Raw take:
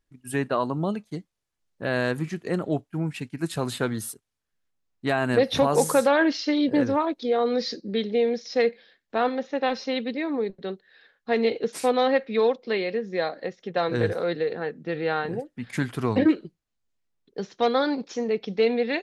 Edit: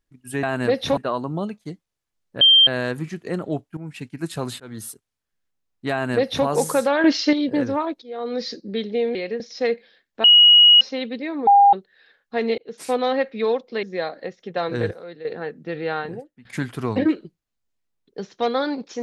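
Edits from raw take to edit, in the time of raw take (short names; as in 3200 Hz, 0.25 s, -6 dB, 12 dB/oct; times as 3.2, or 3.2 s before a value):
1.87 add tone 3160 Hz -9 dBFS 0.26 s
2.97–3.23 fade in, from -13 dB
3.8–4.06 fade in
5.12–5.66 copy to 0.43
6.24–6.53 gain +7 dB
7.22–7.63 fade in, from -22.5 dB
9.19–9.76 bleep 2900 Hz -7.5 dBFS
10.42–10.68 bleep 805 Hz -8.5 dBFS
11.53–11.86 fade in
12.78–13.03 move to 8.35
14.11–14.45 gain -11.5 dB
15.2–15.65 fade out, to -21 dB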